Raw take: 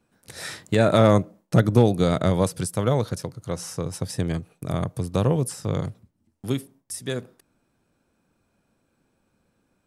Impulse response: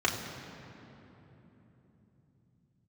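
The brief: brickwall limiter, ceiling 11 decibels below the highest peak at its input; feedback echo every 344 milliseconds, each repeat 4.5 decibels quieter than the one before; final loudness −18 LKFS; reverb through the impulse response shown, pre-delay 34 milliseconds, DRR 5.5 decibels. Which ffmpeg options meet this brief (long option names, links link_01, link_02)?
-filter_complex "[0:a]alimiter=limit=-16dB:level=0:latency=1,aecho=1:1:344|688|1032|1376|1720|2064|2408|2752|3096:0.596|0.357|0.214|0.129|0.0772|0.0463|0.0278|0.0167|0.01,asplit=2[link_01][link_02];[1:a]atrim=start_sample=2205,adelay=34[link_03];[link_02][link_03]afir=irnorm=-1:irlink=0,volume=-17dB[link_04];[link_01][link_04]amix=inputs=2:normalize=0,volume=8.5dB"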